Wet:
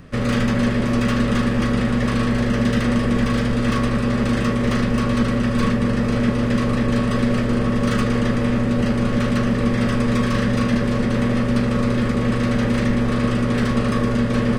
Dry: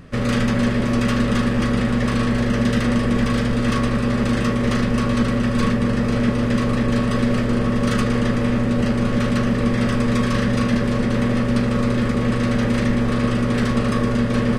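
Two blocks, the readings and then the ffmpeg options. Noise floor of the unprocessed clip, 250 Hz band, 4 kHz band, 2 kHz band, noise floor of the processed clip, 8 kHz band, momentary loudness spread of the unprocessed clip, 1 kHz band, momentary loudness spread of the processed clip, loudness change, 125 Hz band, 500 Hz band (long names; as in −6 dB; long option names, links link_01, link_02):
−21 dBFS, 0.0 dB, −0.5 dB, 0.0 dB, −21 dBFS, −1.0 dB, 1 LU, 0.0 dB, 1 LU, 0.0 dB, 0.0 dB, 0.0 dB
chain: -filter_complex "[0:a]acrossover=split=590|3400[link_01][link_02][link_03];[link_03]asoftclip=type=tanh:threshold=-31dB[link_04];[link_01][link_02][link_04]amix=inputs=3:normalize=0"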